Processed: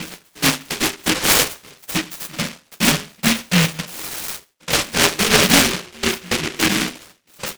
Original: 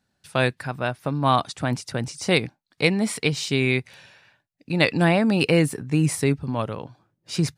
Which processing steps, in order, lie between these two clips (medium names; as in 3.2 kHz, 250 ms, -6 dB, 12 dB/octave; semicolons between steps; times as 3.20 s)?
resonances exaggerated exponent 2; high-pass 340 Hz 24 dB/octave, from 4.94 s 43 Hz, from 6.80 s 280 Hz; upward compressor, threshold -24 dBFS; vibrato 0.57 Hz 14 cents; ring modulator 230 Hz; saturation -27.5 dBFS, distortion -5 dB; trance gate "x..x.x.xxx" 107 bpm -24 dB; doubling 12 ms -5.5 dB; reverberation RT60 0.35 s, pre-delay 3 ms, DRR -5 dB; delay time shaken by noise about 2.3 kHz, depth 0.46 ms; trim -2.5 dB